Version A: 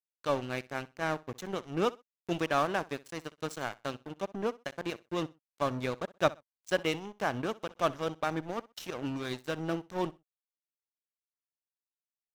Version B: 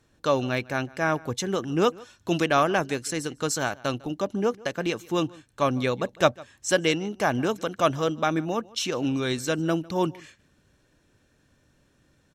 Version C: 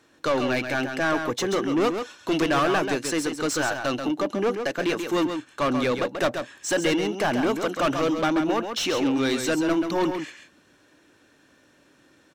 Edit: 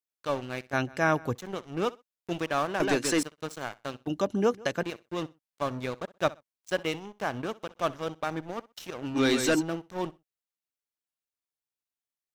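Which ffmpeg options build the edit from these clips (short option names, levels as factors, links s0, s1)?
-filter_complex "[1:a]asplit=2[s0][s1];[2:a]asplit=2[s2][s3];[0:a]asplit=5[s4][s5][s6][s7][s8];[s4]atrim=end=0.732[s9];[s0]atrim=start=0.728:end=1.352[s10];[s5]atrim=start=1.348:end=2.802[s11];[s2]atrim=start=2.798:end=3.232[s12];[s6]atrim=start=3.228:end=4.072[s13];[s1]atrim=start=4.068:end=4.832[s14];[s7]atrim=start=4.828:end=9.18[s15];[s3]atrim=start=9.14:end=9.63[s16];[s8]atrim=start=9.59[s17];[s9][s10]acrossfade=d=0.004:c1=hsin:c2=hsin[s18];[s18][s11]acrossfade=d=0.004:c1=hsin:c2=hsin[s19];[s19][s12]acrossfade=d=0.004:c1=hsin:c2=hsin[s20];[s20][s13]acrossfade=d=0.004:c1=hsin:c2=hsin[s21];[s21][s14]acrossfade=d=0.004:c1=hsin:c2=hsin[s22];[s22][s15]acrossfade=d=0.004:c1=hsin:c2=hsin[s23];[s23][s16]acrossfade=d=0.04:c1=tri:c2=tri[s24];[s24][s17]acrossfade=d=0.04:c1=tri:c2=tri"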